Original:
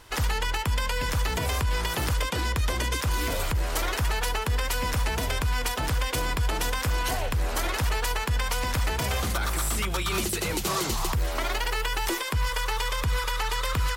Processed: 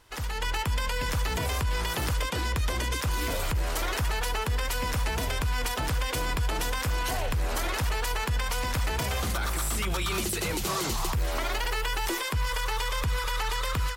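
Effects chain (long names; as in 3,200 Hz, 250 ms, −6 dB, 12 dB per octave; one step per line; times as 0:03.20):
loose part that buzzes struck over −26 dBFS, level −40 dBFS
automatic gain control gain up to 11.5 dB
brickwall limiter −12.5 dBFS, peak gain reduction 6 dB
level −8.5 dB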